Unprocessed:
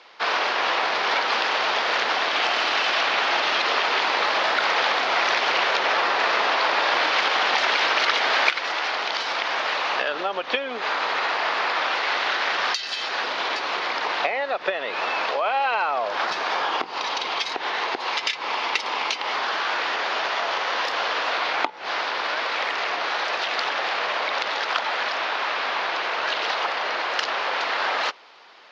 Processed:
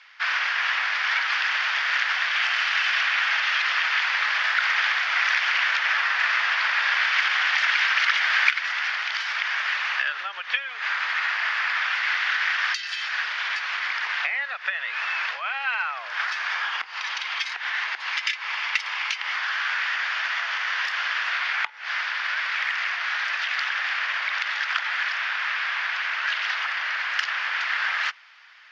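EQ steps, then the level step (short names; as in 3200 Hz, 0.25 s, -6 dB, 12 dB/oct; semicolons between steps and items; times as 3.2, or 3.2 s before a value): resonant high-pass 1700 Hz, resonance Q 2.3; bell 4000 Hz -5.5 dB 0.25 oct; -3.5 dB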